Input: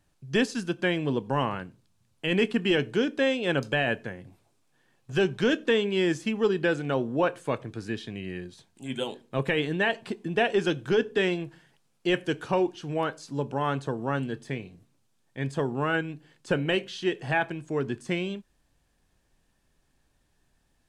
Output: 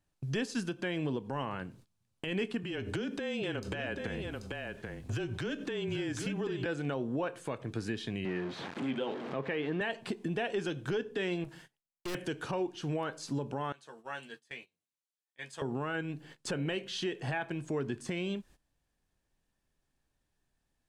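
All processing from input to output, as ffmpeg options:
-filter_complex "[0:a]asettb=1/sr,asplit=3[a][b][c];[a]atrim=end=2.634[d];[b]atrim=start=2.63:end=6.66,asetpts=PTS-STARTPTS,afade=t=in:d=0.004:c=qsin,afade=t=out:st=4.026:d=0.004:c=qsin,acompressor=threshold=-33dB:ratio=10:attack=3.2:release=140:knee=1:detection=peak,afreqshift=-25,aecho=1:1:785:0.376,atrim=end_sample=177723[e];[c]atrim=start=6.656[f];[d][e]acrossfade=d=0.004:c1=hsin:c2=qsin[g];[g][f]acrossfade=d=0.004:c1=qsin:c2=hsin,asettb=1/sr,asplit=3[h][i][j];[h]atrim=end=8.254[k];[i]atrim=start=8.25:end=9.81,asetpts=PTS-STARTPTS,afade=t=in:d=0.004:c=qsin,afade=t=out:st=1.556:d=0.004:c=qsin,aeval=exprs='val(0)+0.5*0.0141*sgn(val(0))':c=same,highpass=190,lowpass=2.4k[l];[j]atrim=start=9.806[m];[k][l]acrossfade=d=0.004:c1=hsin:c2=qsin[n];[n][m]acrossfade=d=0.004:c1=qsin:c2=hsin,asettb=1/sr,asplit=3[o][p][q];[o]atrim=end=11.444[r];[p]atrim=start=11.44:end=12.15,asetpts=PTS-STARTPTS,afade=t=in:d=0.004:c=qsin,afade=t=out:st=0.706:d=0.004:c=qsin,agate=range=-33dB:threshold=-57dB:ratio=3:release=100:detection=peak,highshelf=f=4.6k:g=6.5,aeval=exprs='(tanh(126*val(0)+0.35)-tanh(0.35))/126':c=same[s];[q]atrim=start=12.146[t];[r][s]acrossfade=d=0.004:c1=hsin:c2=qsin[u];[u][t]acrossfade=d=0.004:c1=qsin:c2=hsin,asettb=1/sr,asplit=3[v][w][x];[v]atrim=end=13.724[y];[w]atrim=start=13.72:end=15.62,asetpts=PTS-STARTPTS,afade=t=in:d=0.004:c=qsin,afade=t=out:st=1.896:d=0.004:c=qsin,lowpass=f=2.4k:p=1,aderivative,asplit=2[z][aa];[aa]adelay=13,volume=-5dB[ab];[z][ab]amix=inputs=2:normalize=0,atrim=end_sample=83790[ac];[x]atrim=start=15.616[ad];[y][ac]acrossfade=d=0.004:c1=hsin:c2=qsin[ae];[ae][ad]acrossfade=d=0.004:c1=qsin:c2=hsin,agate=range=-18dB:threshold=-56dB:ratio=16:detection=peak,acompressor=threshold=-42dB:ratio=2.5,alimiter=level_in=8dB:limit=-24dB:level=0:latency=1:release=81,volume=-8dB,volume=7.5dB"

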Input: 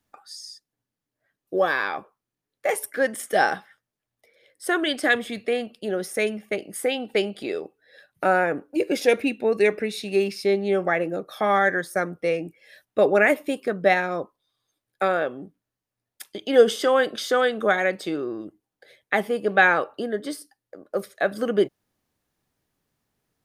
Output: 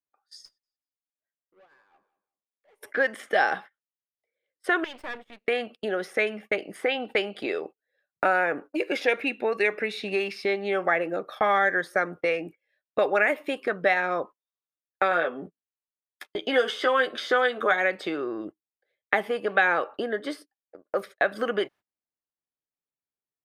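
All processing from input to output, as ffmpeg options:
-filter_complex "[0:a]asettb=1/sr,asplit=3[a][b][c];[a]atrim=end=0.454[d];[b]atrim=start=0.45:end=2.81,asetpts=PTS-STARTPTS,afade=t=in:d=0.004:c=qsin,afade=t=out:st=2.356:d=0.004:c=qsin,acompressor=threshold=-35dB:ratio=2.5:attack=3.2:release=140:knee=1:detection=peak,aeval=exprs='(tanh(100*val(0)+0.15)-tanh(0.15))/100':c=same,aecho=1:1:183|366:0.2|0.0439,atrim=end_sample=104076[e];[c]atrim=start=2.806[f];[d][e]acrossfade=d=0.004:c1=hsin:c2=qsin[g];[g][f]acrossfade=d=0.004:c1=qsin:c2=hsin,asettb=1/sr,asplit=3[h][i][j];[h]atrim=end=4.844[k];[i]atrim=start=4.84:end=5.45,asetpts=PTS-STARTPTS,afade=t=in:d=0.004:c=qsin,afade=t=out:st=0.606:d=0.004:c=qsin,acompressor=threshold=-36dB:ratio=3:attack=3.2:release=140:knee=1:detection=peak,aeval=exprs='max(val(0),0)':c=same[l];[j]atrim=start=5.446[m];[k][l]acrossfade=d=0.004:c1=hsin:c2=qsin[n];[n][m]acrossfade=d=0.004:c1=qsin:c2=hsin,asettb=1/sr,asplit=3[o][p][q];[o]atrim=end=15.104[r];[p]atrim=start=15.1:end=17.74,asetpts=PTS-STARTPTS,afade=t=in:d=0.004:c=qsin,afade=t=out:st=2.636:d=0.004:c=qsin,bandreject=f=2.8k:w=25,asplit=2[s][t];[t]adelay=12,volume=-5dB[u];[s][u]amix=inputs=2:normalize=0,atrim=end_sample=116424[v];[q]atrim=start=17.736[w];[r][v]acrossfade=d=0.004:c1=hsin:c2=qsin[x];[x][w]acrossfade=d=0.004:c1=qsin:c2=hsin,agate=range=-29dB:threshold=-39dB:ratio=16:detection=peak,acrossover=split=860|2400|5600[y][z][aa][ab];[y]acompressor=threshold=-33dB:ratio=4[ac];[z]acompressor=threshold=-30dB:ratio=4[ad];[aa]acompressor=threshold=-35dB:ratio=4[ae];[ab]acompressor=threshold=-47dB:ratio=4[af];[ac][ad][ae][af]amix=inputs=4:normalize=0,bass=f=250:g=-8,treble=f=4k:g=-14,volume=6dB"

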